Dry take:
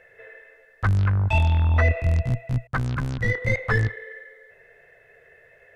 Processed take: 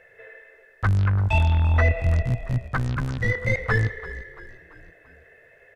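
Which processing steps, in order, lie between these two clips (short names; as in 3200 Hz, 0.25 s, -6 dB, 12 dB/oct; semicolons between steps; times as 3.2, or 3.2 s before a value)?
frequency-shifting echo 0.339 s, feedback 50%, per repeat -46 Hz, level -16 dB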